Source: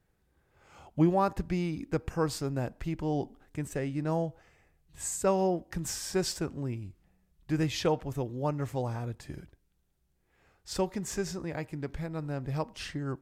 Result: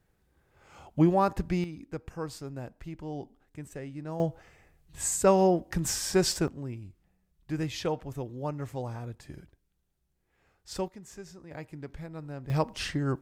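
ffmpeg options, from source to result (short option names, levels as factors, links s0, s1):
-af "asetnsamples=n=441:p=0,asendcmd='1.64 volume volume -7dB;4.2 volume volume 5dB;6.48 volume volume -3dB;10.88 volume volume -12dB;11.51 volume volume -5dB;12.5 volume volume 5.5dB',volume=1.26"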